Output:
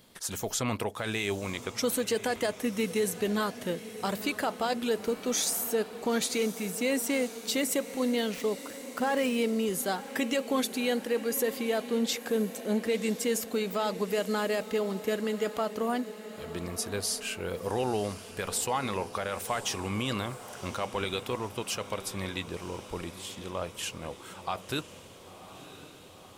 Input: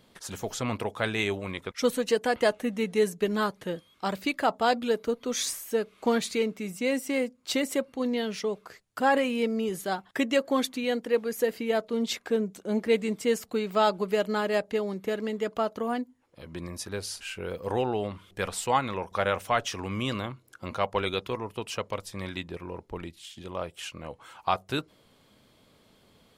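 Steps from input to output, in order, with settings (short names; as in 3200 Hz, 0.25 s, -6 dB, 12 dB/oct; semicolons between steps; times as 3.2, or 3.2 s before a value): 8.34–9.36 median filter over 9 samples; high shelf 6100 Hz +10.5 dB; limiter -19.5 dBFS, peak gain reduction 9.5 dB; diffused feedback echo 1.016 s, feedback 64%, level -14 dB; crackle 270/s -59 dBFS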